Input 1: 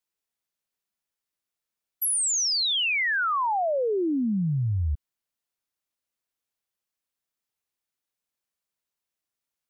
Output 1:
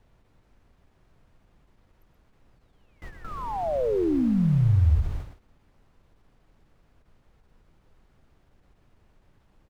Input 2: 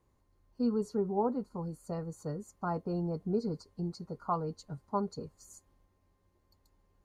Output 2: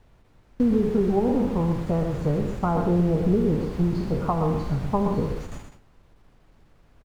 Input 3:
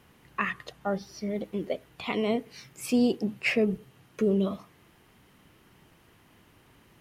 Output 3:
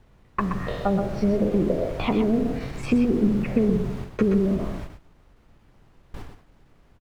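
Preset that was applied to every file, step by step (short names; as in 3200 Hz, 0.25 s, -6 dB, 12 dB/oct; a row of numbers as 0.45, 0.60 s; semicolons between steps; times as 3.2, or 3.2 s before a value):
spectral trails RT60 0.59 s; treble ducked by the level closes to 400 Hz, closed at -24.5 dBFS; compressor, threshold -31 dBFS; added noise pink -50 dBFS; LPF 1400 Hz 6 dB/oct; gate with hold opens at -39 dBFS; low shelf 110 Hz +9.5 dB; on a send: echo 0.125 s -7.5 dB; on the sum: ending taper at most 190 dB/s; match loudness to -24 LUFS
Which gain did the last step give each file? +7.0, +12.0, +11.5 dB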